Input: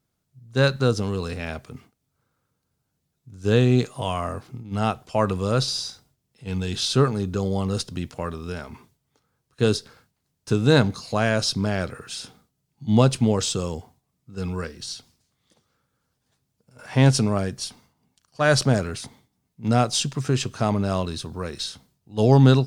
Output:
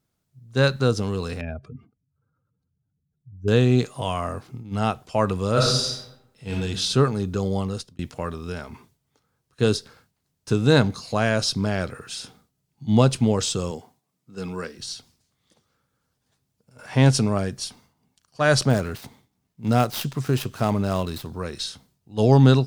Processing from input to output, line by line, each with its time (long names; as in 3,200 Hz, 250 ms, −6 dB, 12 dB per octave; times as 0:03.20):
0:01.41–0:03.48: expanding power law on the bin magnitudes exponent 2.1
0:05.52–0:06.55: thrown reverb, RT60 0.83 s, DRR −3.5 dB
0:07.58–0:07.99: fade out
0:13.71–0:14.79: high-pass filter 170 Hz
0:18.70–0:21.32: gap after every zero crossing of 0.064 ms